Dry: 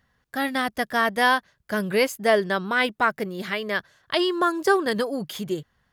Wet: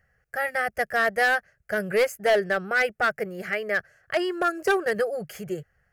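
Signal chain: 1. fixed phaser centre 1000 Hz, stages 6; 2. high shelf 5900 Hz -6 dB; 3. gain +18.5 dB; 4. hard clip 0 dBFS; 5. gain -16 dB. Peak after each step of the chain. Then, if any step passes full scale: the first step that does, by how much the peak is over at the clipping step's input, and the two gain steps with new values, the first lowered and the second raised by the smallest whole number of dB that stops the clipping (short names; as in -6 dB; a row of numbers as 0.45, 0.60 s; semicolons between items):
-10.0, -10.0, +8.5, 0.0, -16.0 dBFS; step 3, 8.5 dB; step 3 +9.5 dB, step 5 -7 dB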